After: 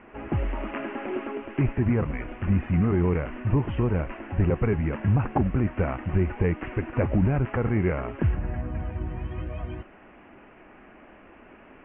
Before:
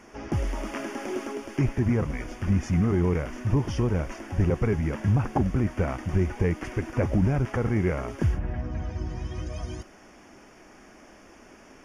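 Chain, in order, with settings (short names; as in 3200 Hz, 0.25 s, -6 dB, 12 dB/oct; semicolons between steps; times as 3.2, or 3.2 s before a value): elliptic low-pass 2800 Hz, stop band 50 dB; gain +1.5 dB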